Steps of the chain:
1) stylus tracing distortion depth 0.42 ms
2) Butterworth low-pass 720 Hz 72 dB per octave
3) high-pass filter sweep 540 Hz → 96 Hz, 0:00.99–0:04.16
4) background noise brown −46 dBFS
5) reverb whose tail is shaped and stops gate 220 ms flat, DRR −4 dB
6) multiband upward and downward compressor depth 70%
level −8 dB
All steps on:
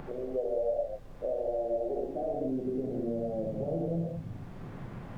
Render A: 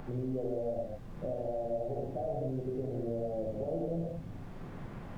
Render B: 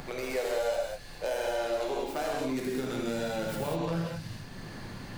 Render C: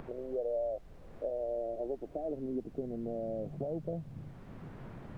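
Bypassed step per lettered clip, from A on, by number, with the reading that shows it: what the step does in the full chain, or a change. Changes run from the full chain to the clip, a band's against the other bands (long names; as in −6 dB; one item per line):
3, change in integrated loudness −3.5 LU
2, 1 kHz band +6.5 dB
5, change in momentary loudness spread +1 LU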